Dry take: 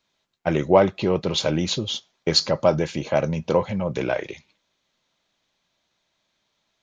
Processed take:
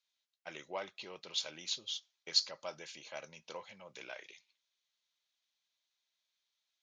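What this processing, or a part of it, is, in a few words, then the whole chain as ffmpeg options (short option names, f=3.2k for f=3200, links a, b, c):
piezo pickup straight into a mixer: -af "lowpass=5.5k,aderivative,volume=-4.5dB"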